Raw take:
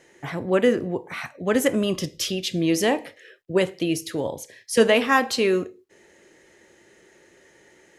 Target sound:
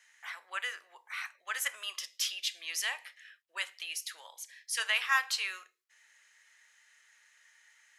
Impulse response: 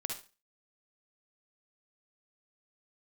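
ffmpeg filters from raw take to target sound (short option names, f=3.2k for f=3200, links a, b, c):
-af "highpass=f=1.2k:w=0.5412,highpass=f=1.2k:w=1.3066,volume=-5dB"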